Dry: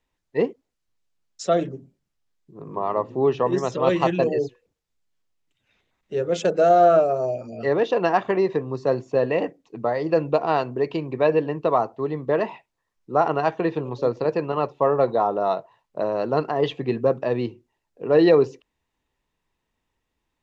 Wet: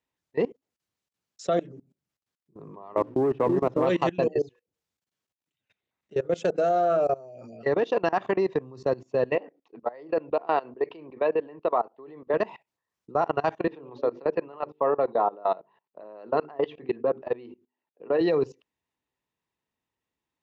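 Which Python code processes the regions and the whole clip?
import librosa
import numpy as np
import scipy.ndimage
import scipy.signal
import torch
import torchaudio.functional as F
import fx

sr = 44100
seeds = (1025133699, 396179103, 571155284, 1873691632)

y = fx.chain(x, sr, fx.lowpass(hz=1300.0, slope=12),
    fx.peak_eq(hz=300.0, db=10.5, octaves=0.23),
    fx.leveller(passes=1), at=(2.97, 3.87))
y = fx.chain(y, sr, fx.highpass(hz=320.0, slope=12),
    fx.air_absorb(metres=230.0), at=(9.35, 12.34))
y = fx.chain(y, sr, fx.bandpass_edges(low_hz=220.0, high_hz=3100.0),
    fx.hum_notches(base_hz=50, count=9), at=(13.67, 18.21))
y = scipy.signal.sosfilt(scipy.signal.butter(2, 94.0, 'highpass', fs=sr, output='sos'), y)
y = fx.level_steps(y, sr, step_db=22)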